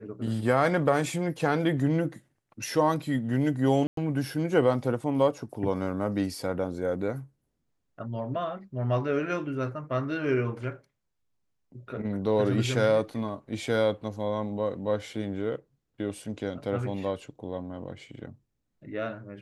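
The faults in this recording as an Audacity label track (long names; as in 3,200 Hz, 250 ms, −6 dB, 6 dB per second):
3.870000	3.970000	drop-out 103 ms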